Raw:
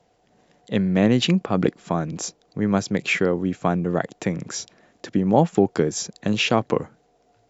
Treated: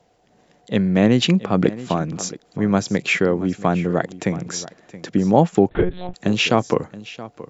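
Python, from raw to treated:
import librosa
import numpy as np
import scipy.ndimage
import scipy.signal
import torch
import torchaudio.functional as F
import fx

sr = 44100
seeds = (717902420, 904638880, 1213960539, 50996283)

y = x + 10.0 ** (-17.0 / 20.0) * np.pad(x, (int(674 * sr / 1000.0), 0))[:len(x)]
y = fx.lpc_monotone(y, sr, seeds[0], pitch_hz=180.0, order=10, at=(5.69, 6.14))
y = F.gain(torch.from_numpy(y), 2.5).numpy()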